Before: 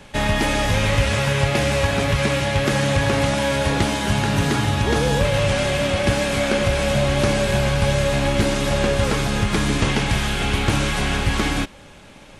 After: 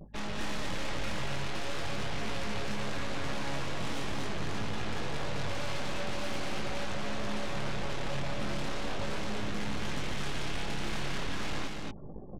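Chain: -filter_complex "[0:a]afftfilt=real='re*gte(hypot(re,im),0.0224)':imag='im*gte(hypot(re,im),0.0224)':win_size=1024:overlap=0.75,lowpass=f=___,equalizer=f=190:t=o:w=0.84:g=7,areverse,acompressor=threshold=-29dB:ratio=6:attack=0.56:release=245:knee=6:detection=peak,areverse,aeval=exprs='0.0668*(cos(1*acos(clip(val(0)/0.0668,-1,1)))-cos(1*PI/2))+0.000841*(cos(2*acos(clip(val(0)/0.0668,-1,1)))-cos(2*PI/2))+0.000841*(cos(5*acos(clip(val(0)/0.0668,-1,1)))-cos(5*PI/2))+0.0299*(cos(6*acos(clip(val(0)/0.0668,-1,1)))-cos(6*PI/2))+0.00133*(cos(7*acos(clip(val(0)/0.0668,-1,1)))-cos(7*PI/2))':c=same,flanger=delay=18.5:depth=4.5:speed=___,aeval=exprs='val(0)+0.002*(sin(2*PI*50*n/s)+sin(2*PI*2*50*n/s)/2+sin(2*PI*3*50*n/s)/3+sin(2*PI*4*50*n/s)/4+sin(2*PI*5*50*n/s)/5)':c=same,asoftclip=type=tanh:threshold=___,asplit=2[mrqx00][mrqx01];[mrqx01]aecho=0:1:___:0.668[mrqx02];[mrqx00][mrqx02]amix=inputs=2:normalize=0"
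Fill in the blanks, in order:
6500, 0.42, -28.5dB, 234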